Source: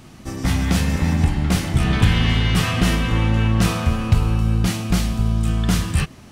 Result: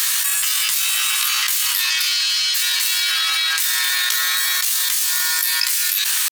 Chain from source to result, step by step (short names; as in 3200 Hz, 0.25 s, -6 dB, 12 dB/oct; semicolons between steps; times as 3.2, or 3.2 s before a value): HPF 840 Hz 24 dB/oct; tilt +4.5 dB/oct; pitch shift +6.5 st; fast leveller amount 100%; gain -4 dB